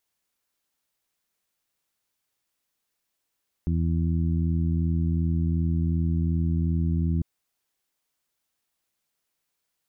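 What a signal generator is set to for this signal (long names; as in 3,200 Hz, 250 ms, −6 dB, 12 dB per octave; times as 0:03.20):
steady harmonic partials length 3.55 s, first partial 82.7 Hz, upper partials −2/−9/−14 dB, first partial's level −23.5 dB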